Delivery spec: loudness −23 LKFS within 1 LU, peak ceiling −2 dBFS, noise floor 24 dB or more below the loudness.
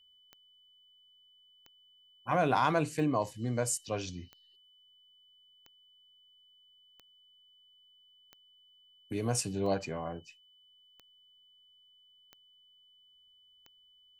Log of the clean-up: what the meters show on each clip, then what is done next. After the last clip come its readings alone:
number of clicks 11; interfering tone 3,000 Hz; level of the tone −61 dBFS; integrated loudness −32.5 LKFS; sample peak −14.5 dBFS; target loudness −23.0 LKFS
→ click removal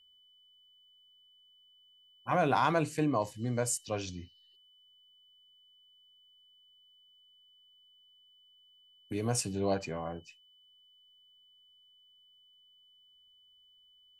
number of clicks 0; interfering tone 3,000 Hz; level of the tone −61 dBFS
→ notch filter 3,000 Hz, Q 30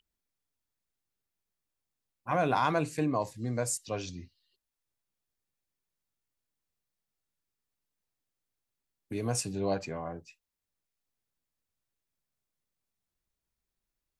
interfering tone none found; integrated loudness −32.0 LKFS; sample peak −14.5 dBFS; target loudness −23.0 LKFS
→ level +9 dB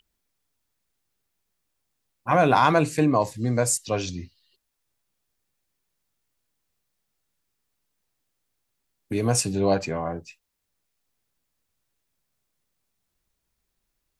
integrated loudness −23.0 LKFS; sample peak −5.5 dBFS; background noise floor −79 dBFS

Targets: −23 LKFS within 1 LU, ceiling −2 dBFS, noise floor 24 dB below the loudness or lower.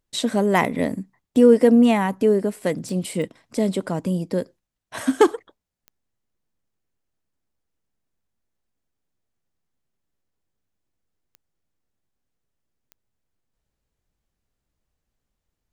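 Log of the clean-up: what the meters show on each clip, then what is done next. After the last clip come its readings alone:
number of clicks 5; integrated loudness −20.5 LKFS; sample peak −4.0 dBFS; target loudness −23.0 LKFS
→ click removal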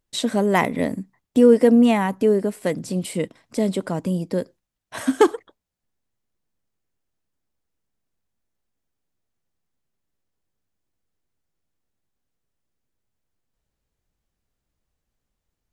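number of clicks 0; integrated loudness −20.5 LKFS; sample peak −4.0 dBFS; target loudness −23.0 LKFS
→ level −2.5 dB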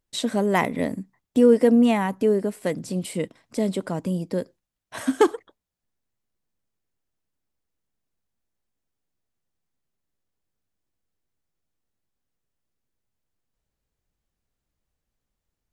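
integrated loudness −23.0 LKFS; sample peak −6.5 dBFS; background noise floor −84 dBFS

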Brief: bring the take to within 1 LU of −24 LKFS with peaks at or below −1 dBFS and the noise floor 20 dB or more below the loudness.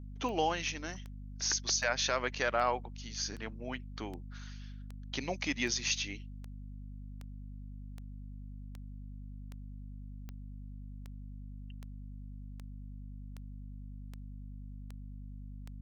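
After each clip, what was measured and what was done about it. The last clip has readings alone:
number of clicks 21; mains hum 50 Hz; hum harmonics up to 250 Hz; level of the hum −43 dBFS; integrated loudness −34.5 LKFS; sample peak −16.0 dBFS; target loudness −24.0 LKFS
→ click removal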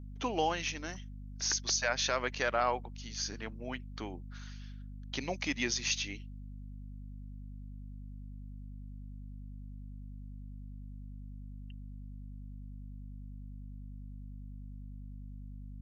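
number of clicks 0; mains hum 50 Hz; hum harmonics up to 250 Hz; level of the hum −43 dBFS
→ mains-hum notches 50/100/150/200/250 Hz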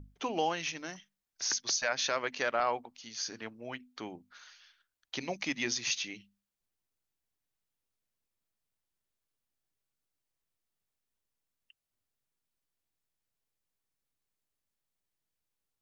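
mains hum none found; integrated loudness −34.0 LKFS; sample peak −16.5 dBFS; target loudness −24.0 LKFS
→ level +10 dB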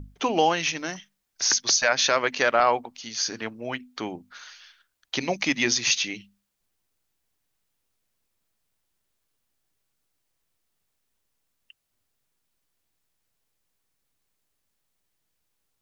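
integrated loudness −24.0 LKFS; sample peak −6.5 dBFS; background noise floor −77 dBFS

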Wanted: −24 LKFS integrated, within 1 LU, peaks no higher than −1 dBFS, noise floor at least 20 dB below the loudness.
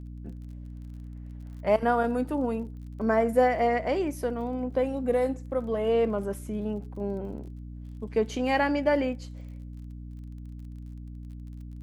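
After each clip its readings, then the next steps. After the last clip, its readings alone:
crackle rate 31 per second; mains hum 60 Hz; hum harmonics up to 300 Hz; level of the hum −38 dBFS; integrated loudness −27.5 LKFS; sample peak −11.0 dBFS; target loudness −24.0 LKFS
→ click removal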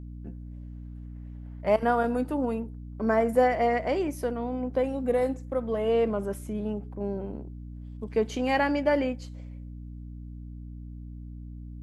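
crackle rate 0 per second; mains hum 60 Hz; hum harmonics up to 300 Hz; level of the hum −38 dBFS
→ hum removal 60 Hz, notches 5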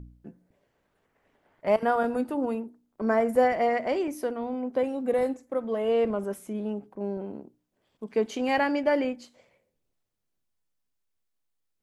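mains hum none found; integrated loudness −27.5 LKFS; sample peak −11.0 dBFS; target loudness −24.0 LKFS
→ level +3.5 dB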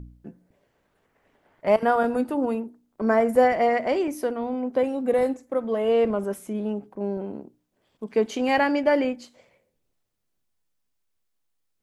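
integrated loudness −24.0 LKFS; sample peak −7.5 dBFS; background noise floor −75 dBFS

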